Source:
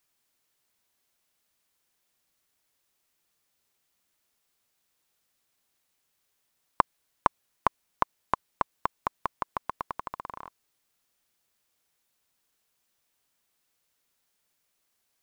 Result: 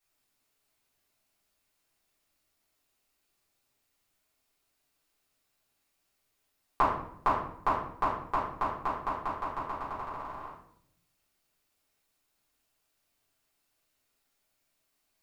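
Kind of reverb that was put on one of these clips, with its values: simulated room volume 140 m³, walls mixed, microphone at 3.6 m; trim -12 dB

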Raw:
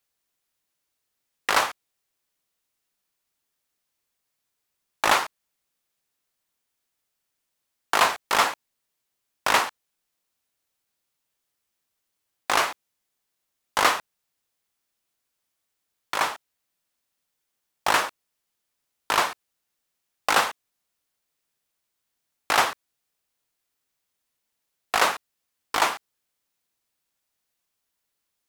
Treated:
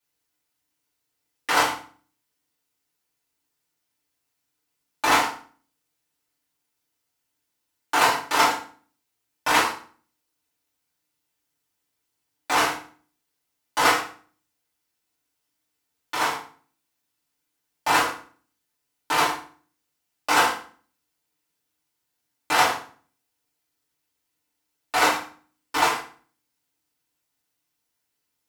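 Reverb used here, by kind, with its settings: FDN reverb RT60 0.44 s, low-frequency decay 1.35×, high-frequency decay 0.85×, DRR -9 dB; trim -8 dB

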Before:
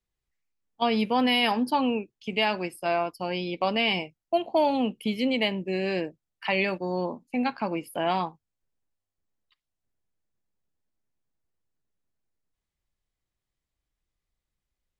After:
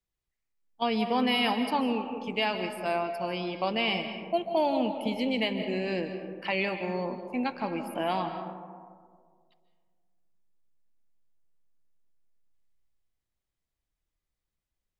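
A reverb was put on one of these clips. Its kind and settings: algorithmic reverb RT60 1.9 s, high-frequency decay 0.3×, pre-delay 110 ms, DRR 7 dB; trim -3.5 dB

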